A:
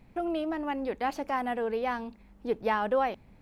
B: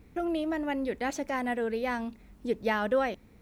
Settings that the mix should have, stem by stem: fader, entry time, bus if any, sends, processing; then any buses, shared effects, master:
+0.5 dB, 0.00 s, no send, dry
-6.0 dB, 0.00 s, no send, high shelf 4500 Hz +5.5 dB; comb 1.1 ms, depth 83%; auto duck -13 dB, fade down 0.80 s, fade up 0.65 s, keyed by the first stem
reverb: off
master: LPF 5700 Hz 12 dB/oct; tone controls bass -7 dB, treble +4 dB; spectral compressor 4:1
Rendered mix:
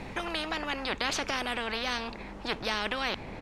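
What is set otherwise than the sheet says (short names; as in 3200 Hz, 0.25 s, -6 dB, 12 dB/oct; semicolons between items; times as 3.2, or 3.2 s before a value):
stem B: polarity flipped; master: missing tone controls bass -7 dB, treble +4 dB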